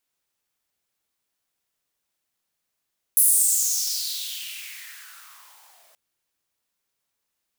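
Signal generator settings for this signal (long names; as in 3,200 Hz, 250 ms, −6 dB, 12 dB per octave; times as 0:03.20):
filter sweep on noise white, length 2.78 s highpass, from 11,000 Hz, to 610 Hz, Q 4.4, exponential, gain ramp −38 dB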